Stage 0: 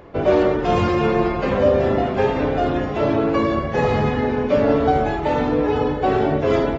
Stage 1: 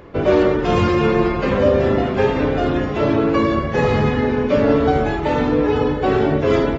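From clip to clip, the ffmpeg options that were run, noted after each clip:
-af "equalizer=f=720:w=2.3:g=-5.5,volume=3dB"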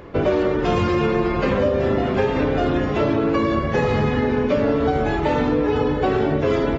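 -af "acompressor=threshold=-17dB:ratio=6,volume=1.5dB"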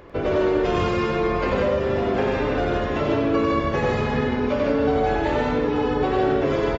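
-filter_complex "[0:a]equalizer=f=170:w=0.87:g=-5,asplit=2[a][b];[b]aecho=0:1:96.21|157.4:0.794|0.708[c];[a][c]amix=inputs=2:normalize=0,volume=-4dB"

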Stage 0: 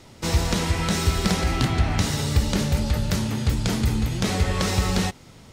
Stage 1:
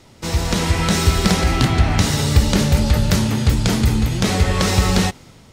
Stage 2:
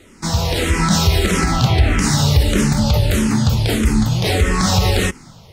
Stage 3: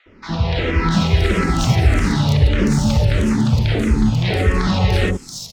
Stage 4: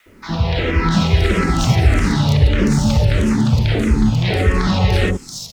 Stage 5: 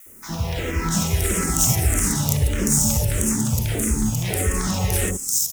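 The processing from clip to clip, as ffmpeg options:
-af "dynaudnorm=f=110:g=9:m=11.5dB"
-filter_complex "[0:a]alimiter=level_in=7dB:limit=-1dB:release=50:level=0:latency=1,asplit=2[a][b];[b]afreqshift=-1.6[c];[a][c]amix=inputs=2:normalize=1,volume=-1.5dB"
-filter_complex "[0:a]adynamicsmooth=sensitivity=1:basefreq=3.8k,acrossover=split=940|4800[a][b][c];[a]adelay=60[d];[c]adelay=680[e];[d][b][e]amix=inputs=3:normalize=0"
-af "acrusher=bits=9:mix=0:aa=0.000001,volume=1dB"
-af "aexciter=amount=14.7:drive=7.5:freq=6.5k,volume=-7.5dB"

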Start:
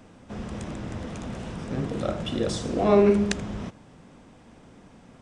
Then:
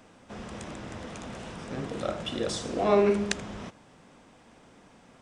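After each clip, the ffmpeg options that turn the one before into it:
-af "lowshelf=f=330:g=-9.5"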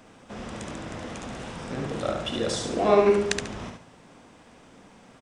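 -af "aecho=1:1:71|142|213|284:0.562|0.157|0.0441|0.0123,volume=2.5dB"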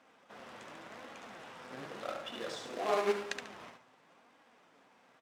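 -af "acrusher=bits=2:mode=log:mix=0:aa=0.000001,bandpass=f=1.4k:t=q:w=0.53:csg=0,flanger=delay=3.6:depth=4.4:regen=62:speed=0.91:shape=sinusoidal,volume=-4.5dB"

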